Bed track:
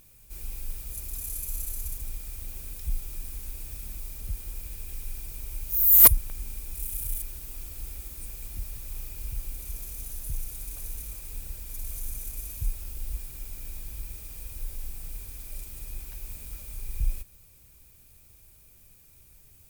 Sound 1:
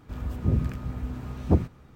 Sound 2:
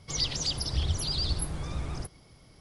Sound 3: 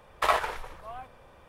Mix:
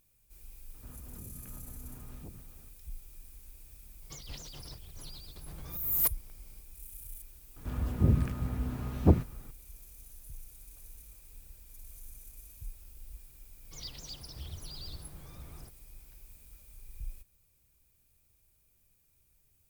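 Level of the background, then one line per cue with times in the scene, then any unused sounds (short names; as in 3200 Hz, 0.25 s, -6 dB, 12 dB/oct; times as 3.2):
bed track -14 dB
0.74 add 1 -10 dB + compressor, threshold -35 dBFS
4.02 add 2 -13 dB + negative-ratio compressor -35 dBFS
7.56 add 1 -1 dB
13.63 add 2 -15 dB
not used: 3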